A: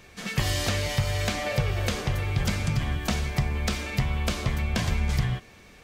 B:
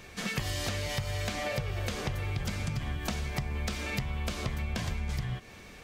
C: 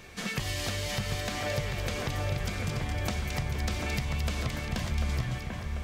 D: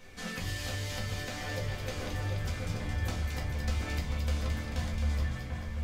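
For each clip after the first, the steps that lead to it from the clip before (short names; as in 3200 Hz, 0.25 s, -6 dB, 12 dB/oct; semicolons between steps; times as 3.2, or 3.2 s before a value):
compressor 6:1, threshold -32 dBFS, peak gain reduction 12.5 dB; gain +2 dB
split-band echo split 2200 Hz, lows 0.742 s, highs 0.22 s, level -4 dB
shoebox room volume 140 m³, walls furnished, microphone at 2 m; gain -8.5 dB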